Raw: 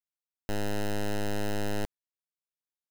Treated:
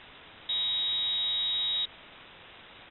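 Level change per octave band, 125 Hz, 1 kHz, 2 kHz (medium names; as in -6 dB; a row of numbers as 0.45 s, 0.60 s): under -20 dB, -9.0 dB, -4.0 dB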